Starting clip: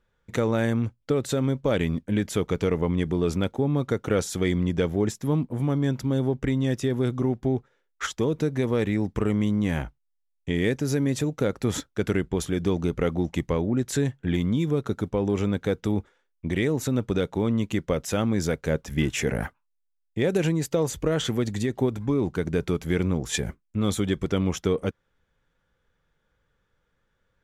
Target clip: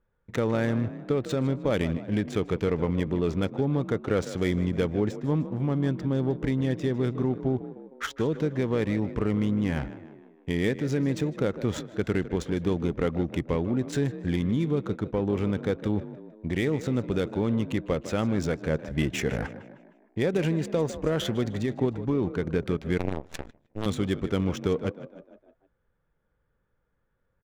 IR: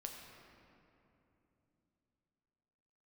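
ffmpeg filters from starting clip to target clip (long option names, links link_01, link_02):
-filter_complex "[0:a]asplit=6[link_01][link_02][link_03][link_04][link_05][link_06];[link_02]adelay=154,afreqshift=38,volume=-13.5dB[link_07];[link_03]adelay=308,afreqshift=76,volume=-19.5dB[link_08];[link_04]adelay=462,afreqshift=114,volume=-25.5dB[link_09];[link_05]adelay=616,afreqshift=152,volume=-31.6dB[link_10];[link_06]adelay=770,afreqshift=190,volume=-37.6dB[link_11];[link_01][link_07][link_08][link_09][link_10][link_11]amix=inputs=6:normalize=0,asettb=1/sr,asplit=3[link_12][link_13][link_14];[link_12]atrim=end=22.984[link_15];[link_13]atrim=start=22.98:end=23.86,asetpts=PTS-STARTPTS,afade=type=in:duration=0.004:curve=qsin,afade=type=out:start_time=0.876:duration=0.004:curve=qsin,aeval=exprs='0.224*(cos(1*acos(clip(val(0)/0.224,-1,1)))-cos(1*PI/2))+0.0501*(cos(2*acos(clip(val(0)/0.224,-1,1)))-cos(2*PI/2))+0.0794*(cos(3*acos(clip(val(0)/0.224,-1,1)))-cos(3*PI/2))+0.01*(cos(6*acos(clip(val(0)/0.224,-1,1)))-cos(6*PI/2))+0.00158*(cos(8*acos(clip(val(0)/0.224,-1,1)))-cos(8*PI/2))':channel_layout=same[link_16];[link_14]atrim=start=23.856[link_17];[link_15][link_16]acrossfade=duration=0.004:curve1=hsin:curve2=qsin[link_18];[link_18][link_17]acrossfade=duration=0.004:curve1=qsin:curve2=hsin,adynamicsmooth=sensitivity=6.5:basefreq=1900,volume=-2dB"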